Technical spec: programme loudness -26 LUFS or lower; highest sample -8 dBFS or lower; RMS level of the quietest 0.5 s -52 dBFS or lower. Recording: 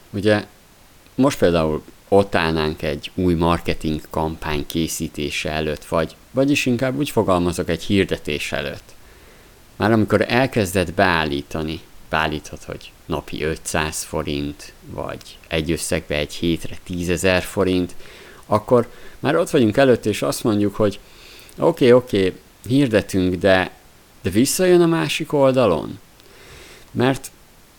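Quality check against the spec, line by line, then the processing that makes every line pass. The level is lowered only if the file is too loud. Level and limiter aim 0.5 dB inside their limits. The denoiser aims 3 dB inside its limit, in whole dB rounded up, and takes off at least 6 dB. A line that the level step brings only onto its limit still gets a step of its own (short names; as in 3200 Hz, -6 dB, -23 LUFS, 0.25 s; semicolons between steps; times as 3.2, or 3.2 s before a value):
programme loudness -20.0 LUFS: fail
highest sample -2.0 dBFS: fail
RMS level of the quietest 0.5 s -49 dBFS: fail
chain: gain -6.5 dB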